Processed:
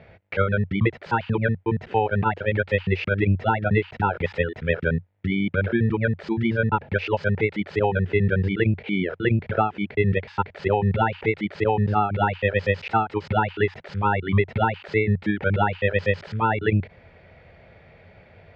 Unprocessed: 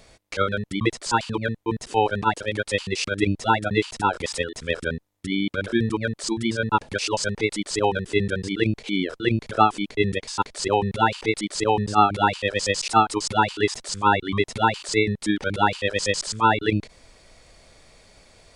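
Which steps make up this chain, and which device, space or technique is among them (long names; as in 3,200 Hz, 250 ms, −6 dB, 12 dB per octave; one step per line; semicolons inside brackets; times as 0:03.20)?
bass amplifier (downward compressor 5 to 1, threshold −21 dBFS, peak gain reduction 10 dB; loudspeaker in its box 73–2,400 Hz, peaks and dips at 92 Hz +9 dB, 160 Hz +5 dB, 290 Hz −9 dB, 1,100 Hz −10 dB)
level +5.5 dB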